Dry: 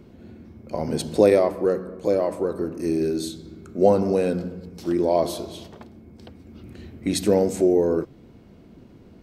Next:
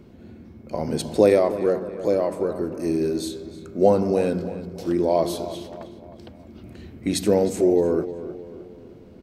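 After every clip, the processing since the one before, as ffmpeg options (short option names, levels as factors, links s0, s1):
-filter_complex "[0:a]asplit=2[s0][s1];[s1]adelay=310,lowpass=f=3200:p=1,volume=0.224,asplit=2[s2][s3];[s3]adelay=310,lowpass=f=3200:p=1,volume=0.48,asplit=2[s4][s5];[s5]adelay=310,lowpass=f=3200:p=1,volume=0.48,asplit=2[s6][s7];[s7]adelay=310,lowpass=f=3200:p=1,volume=0.48,asplit=2[s8][s9];[s9]adelay=310,lowpass=f=3200:p=1,volume=0.48[s10];[s0][s2][s4][s6][s8][s10]amix=inputs=6:normalize=0"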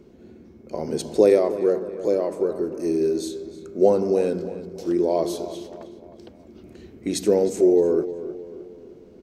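-af "equalizer=f=100:t=o:w=0.67:g=-6,equalizer=f=400:t=o:w=0.67:g=8,equalizer=f=6300:t=o:w=0.67:g=6,volume=0.596"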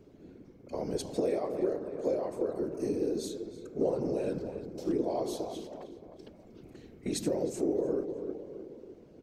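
-af "acompressor=threshold=0.0794:ratio=3,afftfilt=real='hypot(re,im)*cos(2*PI*random(0))':imag='hypot(re,im)*sin(2*PI*random(1))':win_size=512:overlap=0.75"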